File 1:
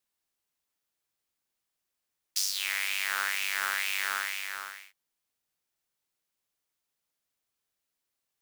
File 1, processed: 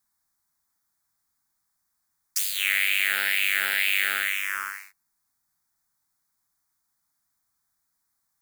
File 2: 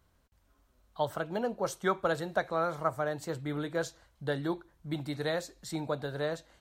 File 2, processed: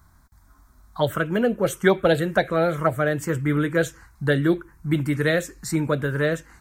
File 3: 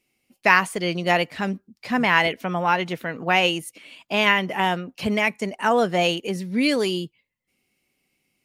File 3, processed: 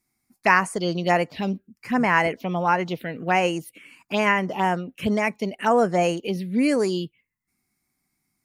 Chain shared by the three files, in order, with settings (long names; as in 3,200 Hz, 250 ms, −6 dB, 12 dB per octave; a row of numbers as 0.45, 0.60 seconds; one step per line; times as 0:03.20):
phaser swept by the level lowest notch 490 Hz, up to 3,600 Hz, full sweep at −17.5 dBFS
loudness normalisation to −23 LKFS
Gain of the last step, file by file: +9.0, +15.0, +1.0 decibels